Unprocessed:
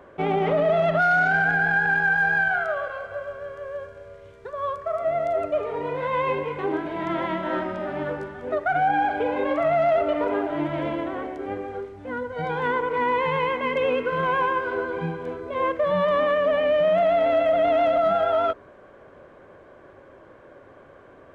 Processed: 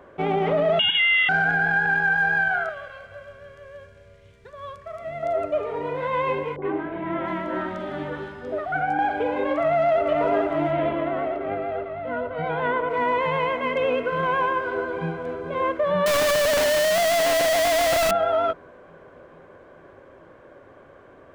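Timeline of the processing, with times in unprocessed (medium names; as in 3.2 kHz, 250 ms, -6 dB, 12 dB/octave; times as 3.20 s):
0.79–1.29 s: frequency inversion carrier 3.5 kHz
2.69–5.23 s: high-order bell 670 Hz -9.5 dB 2.6 oct
6.56–8.99 s: three bands offset in time lows, mids, highs 60/690 ms, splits 730/3100 Hz
9.60–10.04 s: echo throw 450 ms, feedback 80%, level -4.5 dB
10.71–12.90 s: low-pass 3.9 kHz 24 dB/octave
14.58–15.37 s: echo throw 430 ms, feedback 80%, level -12 dB
16.06–18.11 s: one-bit comparator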